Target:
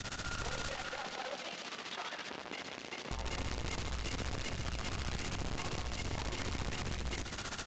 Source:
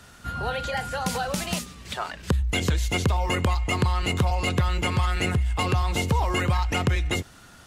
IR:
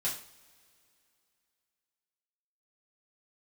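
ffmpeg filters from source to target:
-filter_complex "[0:a]adynamicequalizer=threshold=0.00891:dfrequency=1000:dqfactor=1.2:tfrequency=1000:tqfactor=1.2:attack=5:release=100:ratio=0.375:range=2.5:mode=cutabove:tftype=bell,acompressor=threshold=-34dB:ratio=6,aeval=exprs='(tanh(178*val(0)+0.6)-tanh(0.6))/178':c=same,tremolo=f=15:d=0.94,aeval=exprs='(mod(299*val(0)+1,2)-1)/299':c=same,asettb=1/sr,asplit=3[a][b][c];[a]atrim=end=0.724[d];[b]atrim=start=0.72:end=3.11,asetpts=PTS-STARTPTS,afade=t=in:d=0.004:c=qsin,afade=t=out:st=2.386:d=0.004:c=qsin,highpass=330,lowpass=4.3k[e];[c]atrim=start=3.106[f];[d][e]acrossfade=d=0.004:c1=hsin:c2=qsin[g];[g][f]acrossfade=d=0.004:c1=qsin:c2=hsin,aecho=1:1:148|296|444|592|740:0.398|0.183|0.0842|0.0388|0.0178,volume=17.5dB" -ar 16000 -c:a pcm_alaw

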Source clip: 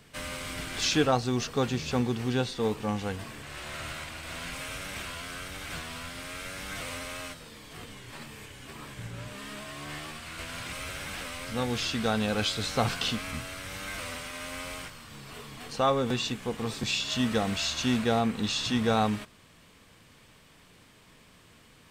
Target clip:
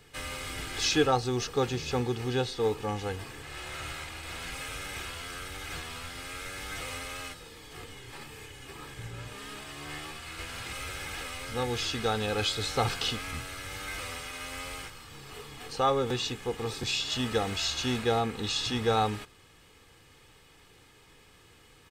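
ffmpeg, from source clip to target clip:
-af "aecho=1:1:2.4:0.54,volume=-1.5dB"

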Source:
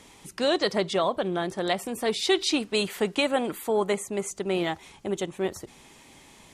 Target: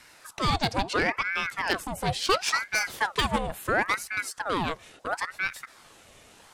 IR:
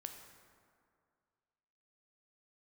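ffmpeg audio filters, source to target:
-af "aeval=exprs='0.282*(cos(1*acos(clip(val(0)/0.282,-1,1)))-cos(1*PI/2))+0.0447*(cos(6*acos(clip(val(0)/0.282,-1,1)))-cos(6*PI/2))+0.0316*(cos(8*acos(clip(val(0)/0.282,-1,1)))-cos(8*PI/2))':c=same,aeval=exprs='val(0)*sin(2*PI*1100*n/s+1100*0.75/0.73*sin(2*PI*0.73*n/s))':c=same,volume=1.5dB"

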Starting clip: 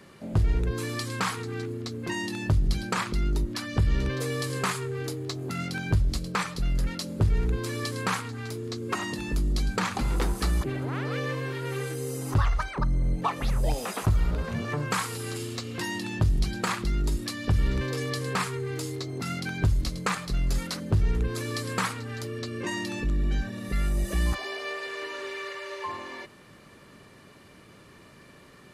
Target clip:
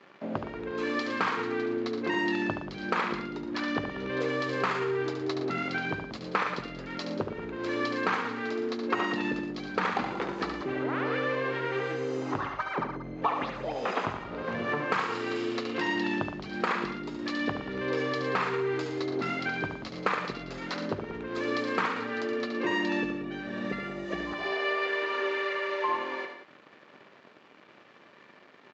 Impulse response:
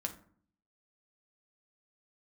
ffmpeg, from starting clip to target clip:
-af "acompressor=threshold=-30dB:ratio=4,aresample=16000,aeval=exprs='sgn(val(0))*max(abs(val(0))-0.00266,0)':c=same,aresample=44100,highpass=280,lowpass=2.7k,aecho=1:1:72|116|184:0.447|0.266|0.224,volume=7dB"

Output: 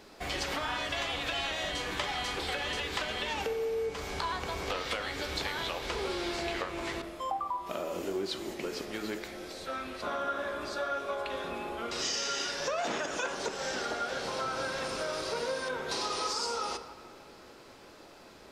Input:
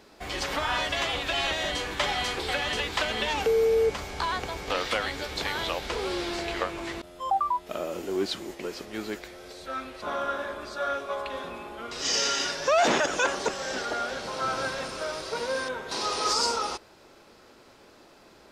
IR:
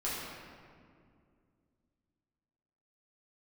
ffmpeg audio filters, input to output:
-filter_complex "[0:a]acompressor=threshold=-32dB:ratio=6,bandreject=f=54.53:t=h:w=4,bandreject=f=109.06:t=h:w=4,bandreject=f=163.59:t=h:w=4,bandreject=f=218.12:t=h:w=4,bandreject=f=272.65:t=h:w=4,bandreject=f=327.18:t=h:w=4,bandreject=f=381.71:t=h:w=4,bandreject=f=436.24:t=h:w=4,bandreject=f=490.77:t=h:w=4,bandreject=f=545.3:t=h:w=4,bandreject=f=599.83:t=h:w=4,bandreject=f=654.36:t=h:w=4,bandreject=f=708.89:t=h:w=4,bandreject=f=763.42:t=h:w=4,bandreject=f=817.95:t=h:w=4,bandreject=f=872.48:t=h:w=4,bandreject=f=927.01:t=h:w=4,bandreject=f=981.54:t=h:w=4,bandreject=f=1.03607k:t=h:w=4,bandreject=f=1.0906k:t=h:w=4,bandreject=f=1.14513k:t=h:w=4,bandreject=f=1.19966k:t=h:w=4,bandreject=f=1.25419k:t=h:w=4,bandreject=f=1.30872k:t=h:w=4,bandreject=f=1.36325k:t=h:w=4,bandreject=f=1.41778k:t=h:w=4,bandreject=f=1.47231k:t=h:w=4,bandreject=f=1.52684k:t=h:w=4,bandreject=f=1.58137k:t=h:w=4,bandreject=f=1.6359k:t=h:w=4,bandreject=f=1.69043k:t=h:w=4,bandreject=f=1.74496k:t=h:w=4,bandreject=f=1.79949k:t=h:w=4,bandreject=f=1.85402k:t=h:w=4,bandreject=f=1.90855k:t=h:w=4,asplit=2[a][b];[1:a]atrim=start_sample=2205[c];[b][c]afir=irnorm=-1:irlink=0,volume=-13dB[d];[a][d]amix=inputs=2:normalize=0"

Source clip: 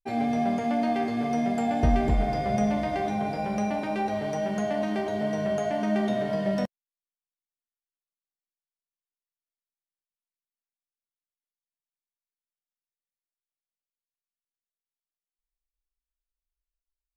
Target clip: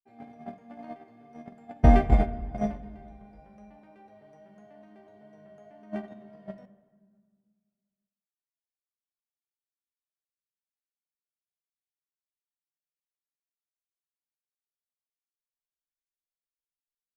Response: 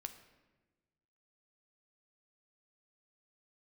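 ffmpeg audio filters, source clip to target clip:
-filter_complex "[0:a]agate=range=-31dB:threshold=-21dB:ratio=16:detection=peak,asplit=2[a][b];[1:a]atrim=start_sample=2205,asetrate=28224,aresample=44100,lowpass=2.8k[c];[b][c]afir=irnorm=-1:irlink=0,volume=1.5dB[d];[a][d]amix=inputs=2:normalize=0"

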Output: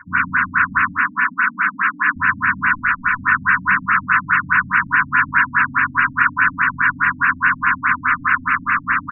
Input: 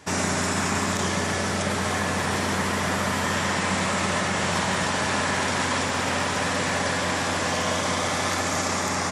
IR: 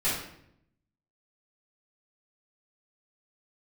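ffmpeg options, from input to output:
-filter_complex "[0:a]asettb=1/sr,asplit=3[a][b][c];[a]atrim=end=2.744[d];[b]atrim=start=2.74:end=3.18,asetpts=PTS-STARTPTS,afade=t=in:d=0.004:c=qsin,afade=t=out:st=0.436:d=0.004:c=qsin,aemphasis=mode=production:type=riaa[e];[c]atrim=start=3.176[f];[d][e]acrossfade=d=0.004:c1=hsin:c2=qsin[g];[g][f]acrossfade=d=0.004:c1=qsin:c2=hsin,aecho=1:1:102:0.531,acrossover=split=830[h][i];[i]aeval=exprs='0.316*sin(PI/2*2.82*val(0)/0.316)':c=same[j];[h][j]amix=inputs=2:normalize=0,asettb=1/sr,asplit=3[k][l][m];[k]atrim=end=0.914[n];[l]atrim=start=0.91:end=2.16,asetpts=PTS-STARTPTS,afade=t=in:d=0.004:c=qsin,afade=t=out:st=1.246:d=0.004:c=qsin,highpass=f=210:w=0.5412,highpass=f=210:w=1.3066[o];[m]atrim=start=2.156[p];[n][o]acrossfade=d=0.004:c1=hsin:c2=qsin[q];[q][p]acrossfade=d=0.004:c1=qsin:c2=hsin,asplit=2[r][s];[1:a]atrim=start_sample=2205[t];[s][t]afir=irnorm=-1:irlink=0,volume=-18dB[u];[r][u]amix=inputs=2:normalize=0,afftfilt=real='re*(1-between(b*sr/4096,310,950))':imag='im*(1-between(b*sr/4096,310,950))':win_size=4096:overlap=0.75,equalizer=f=1.5k:w=4:g=13.5,afftfilt=real='re*lt(b*sr/1024,590*pow(2900/590,0.5+0.5*sin(2*PI*4.8*pts/sr)))':imag='im*lt(b*sr/1024,590*pow(2900/590,0.5+0.5*sin(2*PI*4.8*pts/sr)))':win_size=1024:overlap=0.75,volume=-3.5dB"

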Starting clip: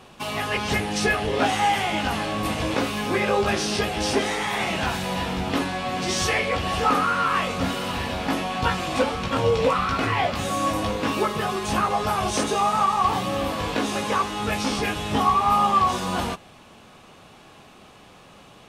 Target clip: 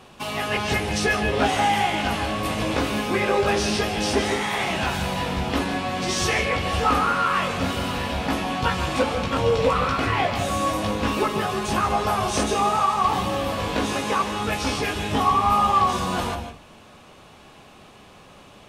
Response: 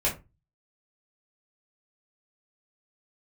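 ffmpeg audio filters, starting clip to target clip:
-filter_complex "[0:a]asplit=2[a][b];[1:a]atrim=start_sample=2205,adelay=140[c];[b][c]afir=irnorm=-1:irlink=0,volume=-17.5dB[d];[a][d]amix=inputs=2:normalize=0"

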